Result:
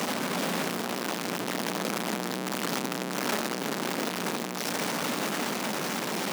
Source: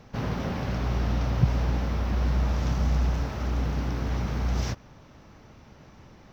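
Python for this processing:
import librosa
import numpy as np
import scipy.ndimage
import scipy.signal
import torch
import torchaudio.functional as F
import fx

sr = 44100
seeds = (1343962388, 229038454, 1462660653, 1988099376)

y = np.sign(x) * np.sqrt(np.mean(np.square(x)))
y = scipy.signal.sosfilt(scipy.signal.butter(6, 180.0, 'highpass', fs=sr, output='sos'), y)
y = fx.rider(y, sr, range_db=10, speed_s=2.0)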